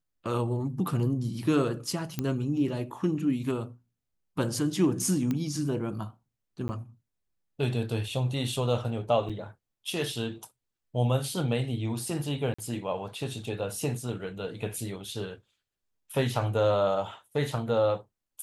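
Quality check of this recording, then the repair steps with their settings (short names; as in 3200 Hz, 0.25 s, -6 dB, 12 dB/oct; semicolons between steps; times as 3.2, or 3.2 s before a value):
2.19 pop -15 dBFS
5.31 pop -17 dBFS
6.68–6.69 gap 10 ms
9.29–9.3 gap 6.2 ms
12.54–12.59 gap 45 ms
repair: de-click; interpolate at 6.68, 10 ms; interpolate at 9.29, 6.2 ms; interpolate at 12.54, 45 ms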